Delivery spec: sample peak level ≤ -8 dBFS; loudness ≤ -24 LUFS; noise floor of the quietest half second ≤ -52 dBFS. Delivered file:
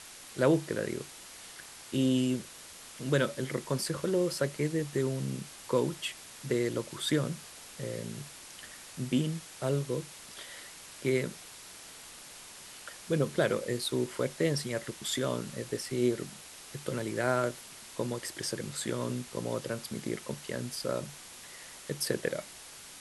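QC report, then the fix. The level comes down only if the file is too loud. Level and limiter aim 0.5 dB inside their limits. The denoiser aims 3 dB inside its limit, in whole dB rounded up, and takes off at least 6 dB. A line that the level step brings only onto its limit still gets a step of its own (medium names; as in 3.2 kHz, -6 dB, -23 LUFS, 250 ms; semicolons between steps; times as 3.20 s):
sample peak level -13.0 dBFS: pass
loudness -33.0 LUFS: pass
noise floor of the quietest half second -49 dBFS: fail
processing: noise reduction 6 dB, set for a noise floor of -49 dBFS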